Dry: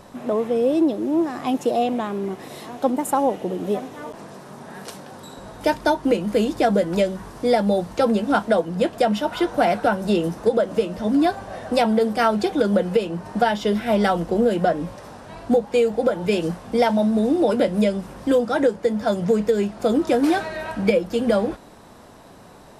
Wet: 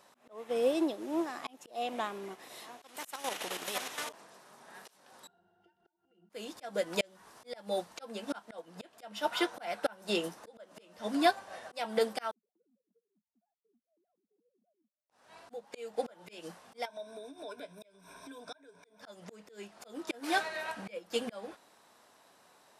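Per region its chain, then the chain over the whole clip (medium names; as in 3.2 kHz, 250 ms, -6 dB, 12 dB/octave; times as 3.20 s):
2.82–4.09 s: high-pass 96 Hz + level held to a coarse grid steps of 9 dB + spectrum-flattening compressor 2:1
5.27–6.30 s: compression, threshold -32 dBFS + pitch-class resonator F, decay 0.13 s
12.31–15.10 s: formants replaced by sine waves + Butterworth band-pass 190 Hz, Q 3.7 + compression 2.5:1, threshold -54 dBFS
16.85–19.01 s: rippled EQ curve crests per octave 1.6, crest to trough 16 dB + compression, threshold -28 dBFS
whole clip: high-pass 1.3 kHz 6 dB/octave; slow attack 289 ms; upward expansion 1.5:1, over -48 dBFS; trim +2.5 dB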